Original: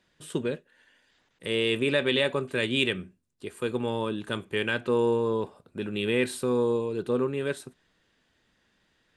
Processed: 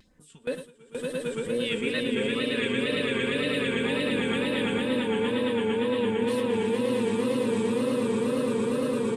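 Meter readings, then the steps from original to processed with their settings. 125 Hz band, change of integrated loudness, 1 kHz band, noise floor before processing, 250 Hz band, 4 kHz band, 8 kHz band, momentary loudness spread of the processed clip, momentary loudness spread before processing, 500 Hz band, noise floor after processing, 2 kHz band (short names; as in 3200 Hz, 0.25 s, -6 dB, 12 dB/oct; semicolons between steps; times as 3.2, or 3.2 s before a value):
-0.5 dB, +1.0 dB, +2.0 dB, -71 dBFS, +4.5 dB, +0.5 dB, +2.5 dB, 6 LU, 12 LU, +1.5 dB, -54 dBFS, +1.0 dB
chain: phaser stages 2, 1.5 Hz, lowest notch 100–3600 Hz; comb 4.1 ms, depth 73%; on a send: swelling echo 0.114 s, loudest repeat 8, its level -3 dB; on the sum: reverse; compressor, threshold -22 dBFS, peak gain reduction 9 dB; reverse; tone controls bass +5 dB, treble -2 dB; gate with hold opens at -19 dBFS; upward compressor, threshold -41 dBFS; wow and flutter 110 cents; gain -2 dB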